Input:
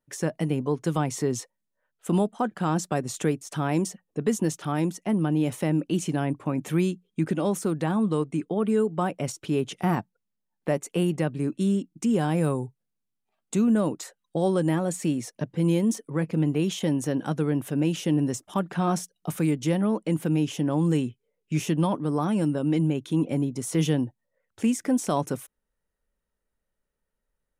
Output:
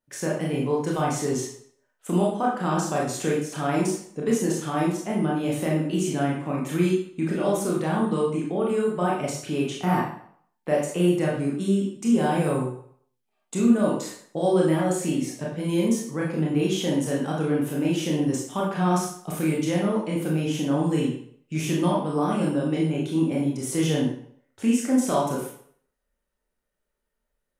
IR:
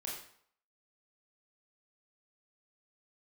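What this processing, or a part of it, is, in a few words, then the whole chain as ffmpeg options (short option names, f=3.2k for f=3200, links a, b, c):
bathroom: -filter_complex "[1:a]atrim=start_sample=2205[a];[0:a][a]afir=irnorm=-1:irlink=0,lowshelf=f=230:g=-3.5,volume=3.5dB"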